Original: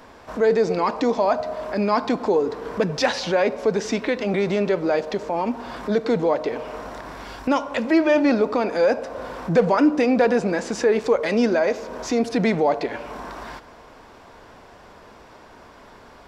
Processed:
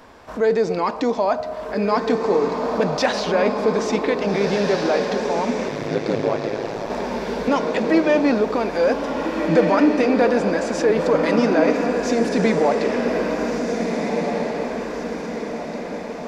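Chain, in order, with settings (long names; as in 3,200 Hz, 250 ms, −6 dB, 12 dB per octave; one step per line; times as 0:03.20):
feedback delay with all-pass diffusion 1,682 ms, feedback 51%, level −3 dB
0:05.68–0:06.90: ring modulation 53 Hz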